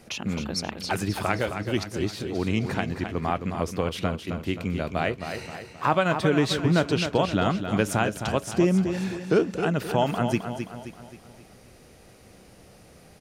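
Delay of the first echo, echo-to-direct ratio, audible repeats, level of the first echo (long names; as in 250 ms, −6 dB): 264 ms, −7.0 dB, 5, −8.0 dB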